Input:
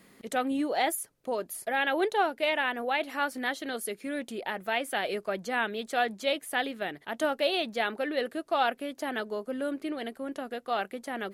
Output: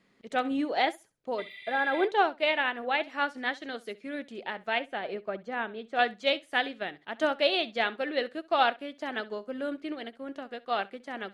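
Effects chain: high shelf 2100 Hz +5 dB, from 4.79 s -6 dB, from 5.99 s +7 dB; 1.41–2.01 spectral repair 1800–12000 Hz after; air absorption 120 m; flutter echo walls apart 11.3 m, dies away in 0.27 s; upward expander 1.5:1, over -46 dBFS; gain +2.5 dB

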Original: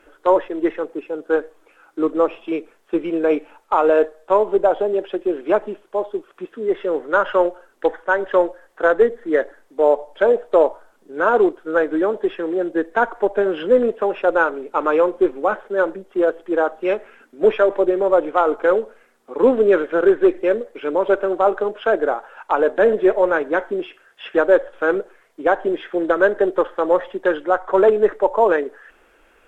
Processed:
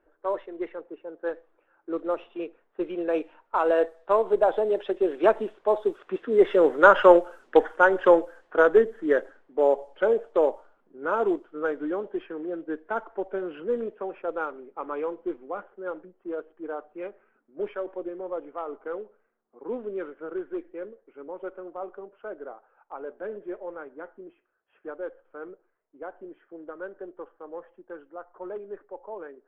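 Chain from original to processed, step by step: Doppler pass-by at 6.8, 17 m/s, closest 19 m; low-pass opened by the level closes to 1200 Hz, open at -23 dBFS; gain +2.5 dB

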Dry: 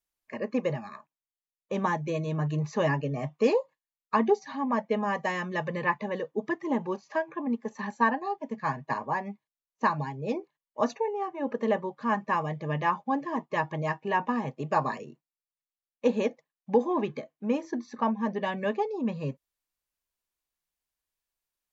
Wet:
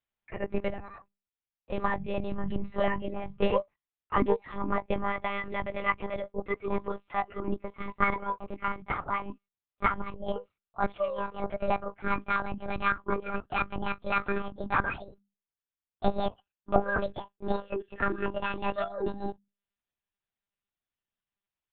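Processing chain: gliding pitch shift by +9 st starting unshifted; notches 50/100/150/200 Hz; monotone LPC vocoder at 8 kHz 200 Hz

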